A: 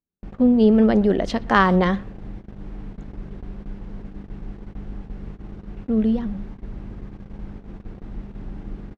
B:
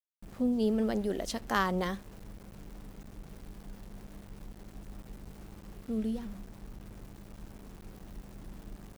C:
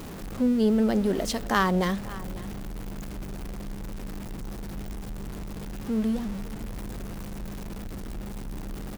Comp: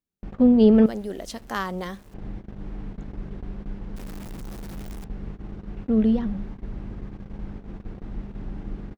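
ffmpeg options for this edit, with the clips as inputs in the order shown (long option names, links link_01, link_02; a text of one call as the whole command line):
ffmpeg -i take0.wav -i take1.wav -i take2.wav -filter_complex "[0:a]asplit=3[link_01][link_02][link_03];[link_01]atrim=end=0.862[link_04];[1:a]atrim=start=0.858:end=2.142[link_05];[link_02]atrim=start=2.138:end=3.962[link_06];[2:a]atrim=start=3.958:end=5.042[link_07];[link_03]atrim=start=5.038[link_08];[link_04][link_05]acrossfade=duration=0.004:curve1=hsin:curve2=hsin[link_09];[link_09][link_06]acrossfade=duration=0.004:curve1=hsin:curve2=hsin[link_10];[link_10][link_07]acrossfade=duration=0.004:curve1=hsin:curve2=hsin[link_11];[link_11][link_08]acrossfade=duration=0.004:curve1=hsin:curve2=hsin" out.wav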